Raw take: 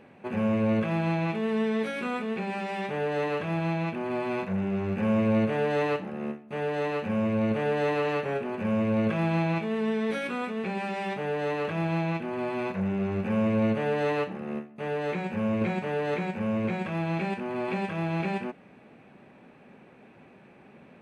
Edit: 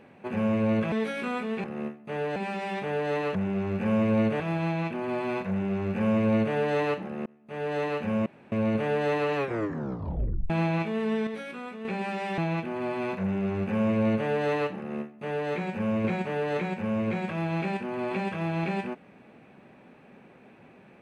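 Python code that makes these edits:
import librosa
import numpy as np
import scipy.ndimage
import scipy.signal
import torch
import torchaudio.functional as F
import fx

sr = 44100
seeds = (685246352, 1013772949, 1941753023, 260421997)

y = fx.edit(x, sr, fx.cut(start_s=0.92, length_s=0.79),
    fx.duplicate(start_s=4.52, length_s=1.05, to_s=3.42),
    fx.fade_in_span(start_s=6.28, length_s=0.47),
    fx.insert_room_tone(at_s=7.28, length_s=0.26),
    fx.tape_stop(start_s=8.12, length_s=1.14),
    fx.clip_gain(start_s=10.03, length_s=0.58, db=-7.0),
    fx.cut(start_s=11.14, length_s=0.81),
    fx.duplicate(start_s=14.35, length_s=0.72, to_s=2.43), tone=tone)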